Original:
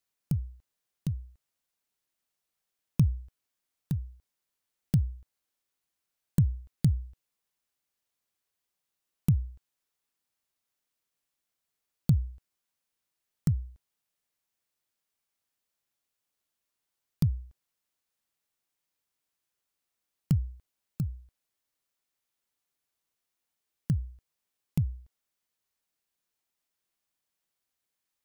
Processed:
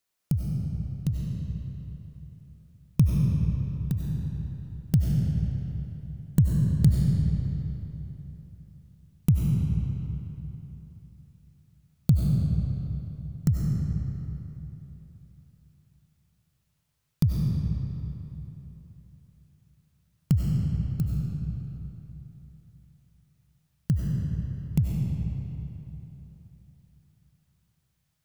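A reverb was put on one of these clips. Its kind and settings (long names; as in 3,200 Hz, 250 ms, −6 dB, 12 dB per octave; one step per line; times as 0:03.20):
comb and all-pass reverb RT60 3.5 s, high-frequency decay 0.7×, pre-delay 55 ms, DRR −2 dB
level +3 dB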